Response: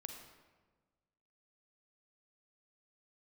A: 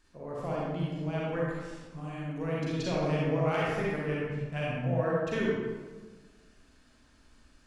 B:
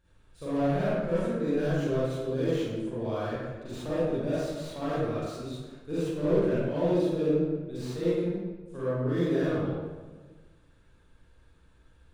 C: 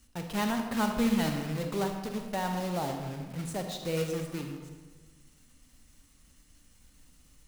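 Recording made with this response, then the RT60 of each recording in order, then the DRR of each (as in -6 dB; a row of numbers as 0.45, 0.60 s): C; 1.4, 1.4, 1.4 s; -6.0, -11.0, 4.0 dB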